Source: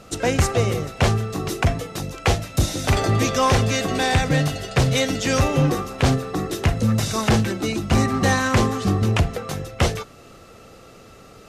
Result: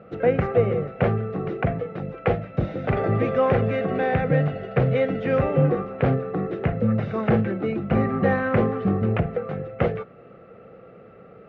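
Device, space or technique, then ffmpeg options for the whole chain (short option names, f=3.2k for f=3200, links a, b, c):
bass cabinet: -af "highpass=84,equalizer=f=84:t=q:w=4:g=-10,equalizer=f=180:t=q:w=4:g=4,equalizer=f=290:t=q:w=4:g=-5,equalizer=f=490:t=q:w=4:g=6,equalizer=f=980:t=q:w=4:g=-10,equalizer=f=1.7k:t=q:w=4:g=-3,lowpass=f=2k:w=0.5412,lowpass=f=2k:w=1.3066,volume=-1dB"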